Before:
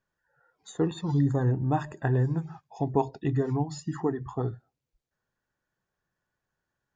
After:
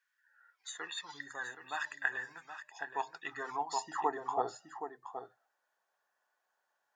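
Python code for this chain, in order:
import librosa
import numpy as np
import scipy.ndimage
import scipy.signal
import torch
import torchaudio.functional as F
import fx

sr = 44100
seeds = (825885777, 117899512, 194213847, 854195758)

y = x + 10.0 ** (-10.5 / 20.0) * np.pad(x, (int(772 * sr / 1000.0), 0))[:len(x)]
y = fx.filter_sweep_highpass(y, sr, from_hz=1800.0, to_hz=730.0, start_s=2.72, end_s=4.36, q=2.1)
y = F.gain(torch.from_numpy(y), 1.0).numpy()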